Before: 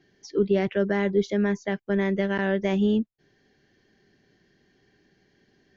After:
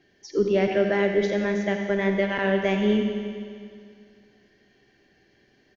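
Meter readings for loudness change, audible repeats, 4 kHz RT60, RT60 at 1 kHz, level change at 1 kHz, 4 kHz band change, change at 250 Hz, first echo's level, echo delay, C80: +1.0 dB, 1, 2.2 s, 2.2 s, +3.5 dB, +4.5 dB, −0.5 dB, −13.5 dB, 87 ms, 4.5 dB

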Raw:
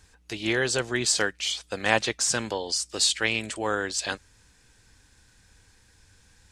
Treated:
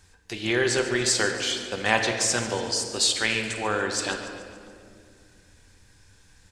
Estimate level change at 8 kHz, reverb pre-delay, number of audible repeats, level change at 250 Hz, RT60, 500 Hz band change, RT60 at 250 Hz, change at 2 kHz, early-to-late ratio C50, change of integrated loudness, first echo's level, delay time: +0.5 dB, 3 ms, 3, +2.0 dB, 2.2 s, +2.5 dB, 3.1 s, +1.5 dB, 5.0 dB, +1.5 dB, −14.5 dB, 142 ms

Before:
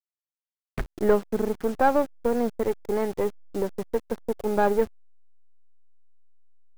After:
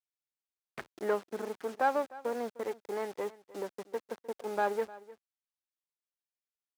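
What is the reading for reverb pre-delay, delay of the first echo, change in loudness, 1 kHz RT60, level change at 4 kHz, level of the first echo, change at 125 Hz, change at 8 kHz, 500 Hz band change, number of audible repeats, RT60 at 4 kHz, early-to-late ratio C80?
no reverb audible, 305 ms, −9.5 dB, no reverb audible, −5.0 dB, −19.0 dB, below −15 dB, −7.0 dB, −9.5 dB, 1, no reverb audible, no reverb audible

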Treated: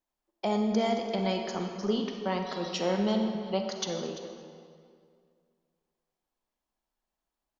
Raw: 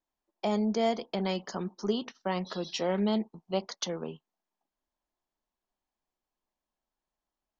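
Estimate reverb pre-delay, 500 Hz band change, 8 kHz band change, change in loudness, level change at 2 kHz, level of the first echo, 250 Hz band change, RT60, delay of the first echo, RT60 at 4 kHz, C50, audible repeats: 35 ms, +1.5 dB, can't be measured, +1.5 dB, +1.5 dB, −15.0 dB, +1.5 dB, 2.2 s, 341 ms, 1.6 s, 4.0 dB, 1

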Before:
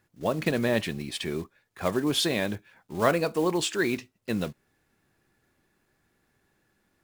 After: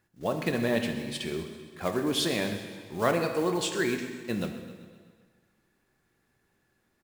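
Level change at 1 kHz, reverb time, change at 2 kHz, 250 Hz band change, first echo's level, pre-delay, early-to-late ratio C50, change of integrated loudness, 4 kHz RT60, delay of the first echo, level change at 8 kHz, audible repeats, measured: −2.0 dB, 1.6 s, −2.0 dB, −1.5 dB, −15.5 dB, 6 ms, 7.0 dB, −2.0 dB, 1.6 s, 130 ms, −2.0 dB, 5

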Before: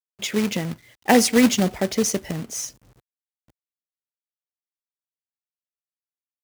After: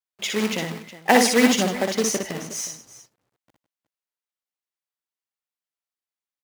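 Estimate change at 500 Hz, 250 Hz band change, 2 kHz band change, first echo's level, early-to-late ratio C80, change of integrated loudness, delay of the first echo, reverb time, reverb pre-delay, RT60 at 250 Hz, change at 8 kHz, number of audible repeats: +0.5 dB, −2.5 dB, +3.5 dB, −4.0 dB, no reverb audible, 0.0 dB, 60 ms, no reverb audible, no reverb audible, no reverb audible, 0.0 dB, 3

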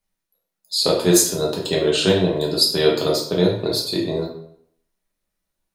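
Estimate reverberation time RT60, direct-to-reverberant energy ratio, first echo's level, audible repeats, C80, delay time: 0.65 s, −2.5 dB, no echo audible, no echo audible, 8.5 dB, no echo audible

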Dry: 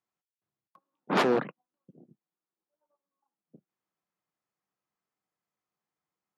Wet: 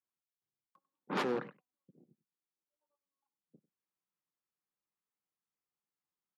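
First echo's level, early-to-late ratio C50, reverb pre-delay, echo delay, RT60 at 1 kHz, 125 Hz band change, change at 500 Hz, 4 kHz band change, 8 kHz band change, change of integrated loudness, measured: −19.0 dB, no reverb audible, no reverb audible, 96 ms, no reverb audible, −9.0 dB, −9.5 dB, −9.0 dB, −9.0 dB, −9.5 dB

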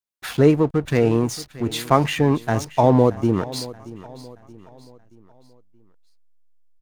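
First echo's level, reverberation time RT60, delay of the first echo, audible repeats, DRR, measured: −18.0 dB, no reverb audible, 627 ms, 3, no reverb audible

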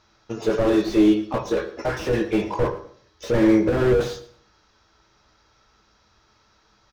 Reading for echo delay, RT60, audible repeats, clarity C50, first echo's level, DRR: 113 ms, 0.60 s, 2, 12.5 dB, −17.5 dB, 7.5 dB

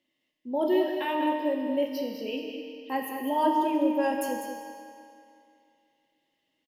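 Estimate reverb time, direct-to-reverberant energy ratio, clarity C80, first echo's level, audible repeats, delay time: 2.5 s, 0.5 dB, 2.5 dB, −8.0 dB, 1, 199 ms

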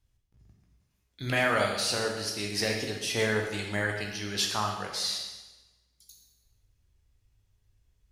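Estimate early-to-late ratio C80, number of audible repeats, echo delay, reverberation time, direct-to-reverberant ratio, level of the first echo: 6.5 dB, no echo audible, no echo audible, 1.1 s, 0.5 dB, no echo audible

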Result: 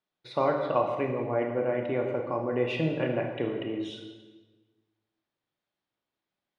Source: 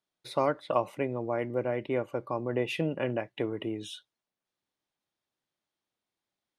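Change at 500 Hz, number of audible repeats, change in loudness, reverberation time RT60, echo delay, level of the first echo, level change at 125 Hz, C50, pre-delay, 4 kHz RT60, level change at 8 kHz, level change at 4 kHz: +3.0 dB, no echo audible, +2.5 dB, 1.4 s, no echo audible, no echo audible, +2.5 dB, 4.5 dB, 22 ms, 1.1 s, can't be measured, 0.0 dB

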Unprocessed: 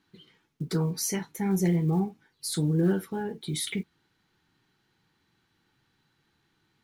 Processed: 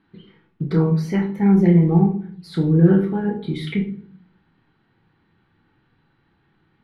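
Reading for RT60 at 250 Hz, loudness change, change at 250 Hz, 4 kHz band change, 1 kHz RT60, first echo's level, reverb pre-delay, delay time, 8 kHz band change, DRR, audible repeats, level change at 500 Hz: 0.85 s, +10.0 dB, +11.0 dB, −3.0 dB, 0.45 s, no echo audible, 25 ms, no echo audible, below −15 dB, 3.0 dB, no echo audible, +9.5 dB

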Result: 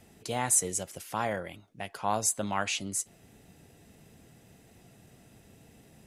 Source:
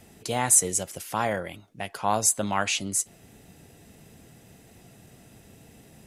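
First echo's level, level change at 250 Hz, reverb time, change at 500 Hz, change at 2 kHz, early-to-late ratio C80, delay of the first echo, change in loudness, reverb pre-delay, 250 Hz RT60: no echo audible, −4.5 dB, no reverb audible, −4.5 dB, −4.5 dB, no reverb audible, no echo audible, −6.0 dB, no reverb audible, no reverb audible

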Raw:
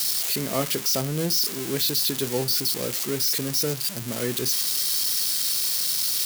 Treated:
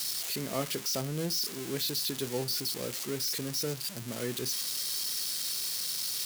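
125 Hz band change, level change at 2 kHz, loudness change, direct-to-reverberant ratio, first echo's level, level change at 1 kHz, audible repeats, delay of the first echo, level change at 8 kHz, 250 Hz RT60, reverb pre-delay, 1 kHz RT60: −7.0 dB, −7.0 dB, −9.0 dB, no reverb audible, no echo audible, −7.0 dB, no echo audible, no echo audible, −8.5 dB, no reverb audible, no reverb audible, no reverb audible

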